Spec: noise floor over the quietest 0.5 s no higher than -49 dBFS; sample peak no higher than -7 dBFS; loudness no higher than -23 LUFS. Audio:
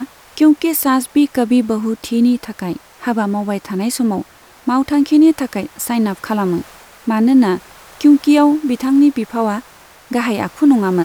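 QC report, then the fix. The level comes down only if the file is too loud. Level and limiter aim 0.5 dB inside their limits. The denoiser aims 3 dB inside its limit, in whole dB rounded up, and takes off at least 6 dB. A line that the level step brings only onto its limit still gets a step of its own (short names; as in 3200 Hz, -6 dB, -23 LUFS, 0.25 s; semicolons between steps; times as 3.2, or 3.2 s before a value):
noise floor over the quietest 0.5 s -43 dBFS: fail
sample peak -1.5 dBFS: fail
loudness -15.5 LUFS: fail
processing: gain -8 dB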